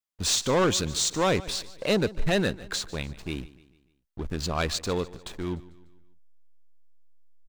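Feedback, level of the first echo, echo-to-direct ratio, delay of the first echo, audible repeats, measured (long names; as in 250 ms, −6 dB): 47%, −19.0 dB, −18.0 dB, 148 ms, 3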